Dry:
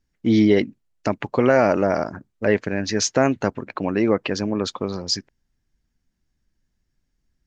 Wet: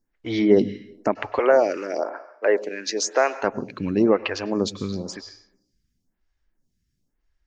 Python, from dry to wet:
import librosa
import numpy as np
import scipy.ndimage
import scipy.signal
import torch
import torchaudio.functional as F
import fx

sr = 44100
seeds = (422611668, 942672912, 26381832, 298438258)

y = fx.highpass(x, sr, hz=360.0, slope=24, at=(1.39, 3.43))
y = fx.rev_plate(y, sr, seeds[0], rt60_s=0.74, hf_ratio=0.85, predelay_ms=90, drr_db=14.5)
y = fx.stagger_phaser(y, sr, hz=0.99)
y = F.gain(torch.from_numpy(y), 2.0).numpy()